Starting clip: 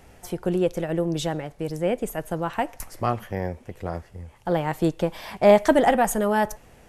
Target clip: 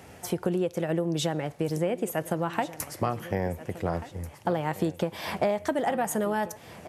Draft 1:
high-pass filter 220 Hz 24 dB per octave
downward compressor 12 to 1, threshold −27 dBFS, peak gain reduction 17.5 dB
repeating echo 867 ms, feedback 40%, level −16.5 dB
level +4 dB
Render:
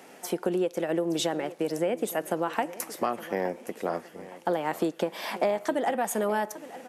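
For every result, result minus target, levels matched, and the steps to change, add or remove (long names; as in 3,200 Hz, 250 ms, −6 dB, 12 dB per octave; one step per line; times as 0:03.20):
125 Hz band −10.0 dB; echo 569 ms early
change: high-pass filter 82 Hz 24 dB per octave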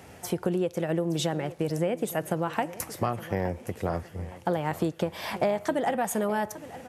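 echo 569 ms early
change: repeating echo 1,436 ms, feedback 40%, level −16.5 dB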